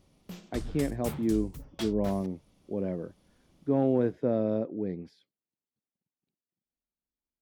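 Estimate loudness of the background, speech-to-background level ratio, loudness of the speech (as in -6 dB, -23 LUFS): -42.0 LUFS, 11.0 dB, -31.0 LUFS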